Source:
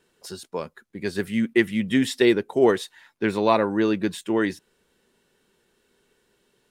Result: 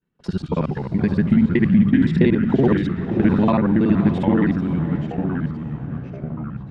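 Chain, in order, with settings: time reversed locally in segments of 47 ms; low-pass 2.4 kHz 12 dB/octave; expander -54 dBFS; resonant low shelf 290 Hz +11 dB, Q 1.5; compression 3:1, threshold -25 dBFS, peak gain reduction 12.5 dB; echo that smears into a reverb 514 ms, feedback 42%, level -12 dB; ever faster or slower copies 93 ms, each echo -3 st, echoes 3, each echo -6 dB; trim +8 dB

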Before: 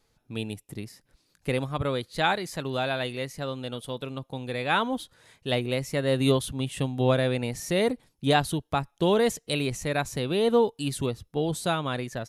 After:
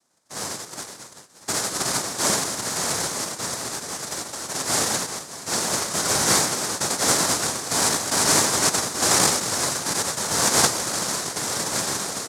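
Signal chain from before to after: reverse bouncing-ball echo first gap 90 ms, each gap 1.4×, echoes 5; 10.70–11.73 s: compressor with a negative ratio -27 dBFS, ratio -1; noise-vocoded speech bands 1; peaking EQ 2.8 kHz -14 dB 1.2 oct; 7.76–8.34 s: echo throw 350 ms, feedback 35%, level -0.5 dB; trim +5 dB

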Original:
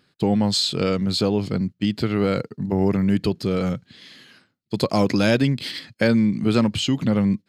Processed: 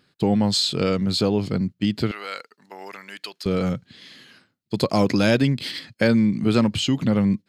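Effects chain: 2.11–3.46 s: high-pass 1.2 kHz 12 dB/octave

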